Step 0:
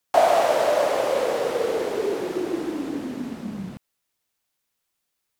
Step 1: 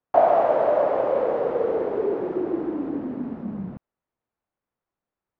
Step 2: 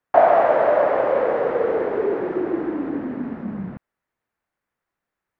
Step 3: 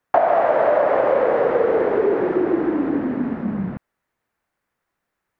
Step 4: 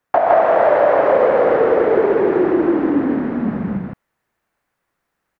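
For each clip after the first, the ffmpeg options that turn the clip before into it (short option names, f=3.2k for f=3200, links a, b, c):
-af "lowpass=1.1k,volume=1dB"
-af "equalizer=f=1.8k:w=1.3:g=9,volume=2dB"
-af "acompressor=threshold=-18dB:ratio=6,volume=5dB"
-af "aecho=1:1:122.4|163.3:0.355|0.891,volume=1dB"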